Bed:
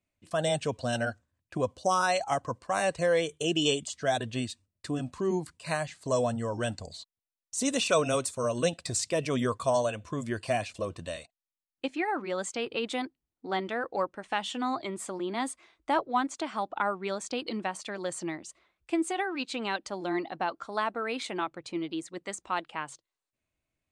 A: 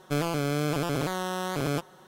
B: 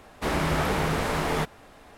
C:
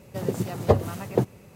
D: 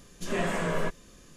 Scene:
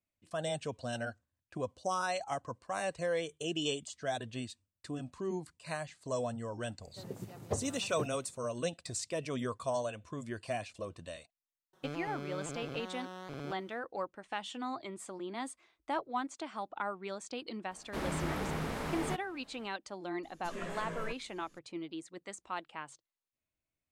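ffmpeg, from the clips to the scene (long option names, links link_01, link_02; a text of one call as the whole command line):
ffmpeg -i bed.wav -i cue0.wav -i cue1.wav -i cue2.wav -i cue3.wav -filter_complex "[0:a]volume=-8dB[link_01];[1:a]acrossover=split=5500[link_02][link_03];[link_03]acompressor=threshold=-54dB:ratio=4:attack=1:release=60[link_04];[link_02][link_04]amix=inputs=2:normalize=0[link_05];[2:a]equalizer=frequency=220:width_type=o:width=1.2:gain=4.5[link_06];[4:a]bandreject=frequency=800:width=7.3[link_07];[3:a]atrim=end=1.55,asetpts=PTS-STARTPTS,volume=-16.5dB,afade=type=in:duration=0.004:curve=hsin,afade=type=out:start_time=1.546:duration=0.004:curve=hsin,adelay=300762S[link_08];[link_05]atrim=end=2.07,asetpts=PTS-STARTPTS,volume=-14.5dB,afade=type=in:duration=0.004:curve=hsin,afade=type=out:start_time=2.066:duration=0.004:curve=hsin,adelay=11730[link_09];[link_06]atrim=end=1.97,asetpts=PTS-STARTPTS,volume=-12dB,afade=type=in:duration=0.004:curve=hsin,afade=type=out:start_time=1.966:duration=0.004:curve=hsin,adelay=17710[link_10];[link_07]atrim=end=1.36,asetpts=PTS-STARTPTS,volume=-12.5dB,afade=type=in:duration=0.004:curve=hsin,afade=type=out:start_time=1.356:duration=0.004:curve=hsin,adelay=20230[link_11];[link_01][link_08][link_09][link_10][link_11]amix=inputs=5:normalize=0" out.wav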